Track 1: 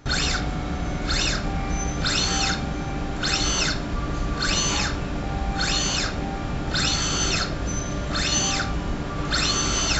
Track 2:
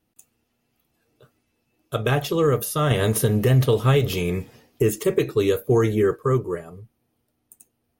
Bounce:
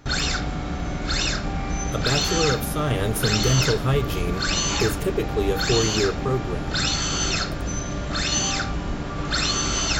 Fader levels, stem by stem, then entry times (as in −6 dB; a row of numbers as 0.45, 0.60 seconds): −0.5, −4.0 decibels; 0.00, 0.00 seconds